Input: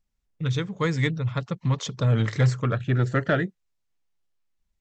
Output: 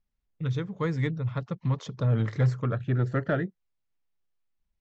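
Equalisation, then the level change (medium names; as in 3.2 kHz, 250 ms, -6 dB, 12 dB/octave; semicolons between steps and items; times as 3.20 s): dynamic bell 2.9 kHz, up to -6 dB, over -43 dBFS, Q 0.78; distance through air 120 m; -3.0 dB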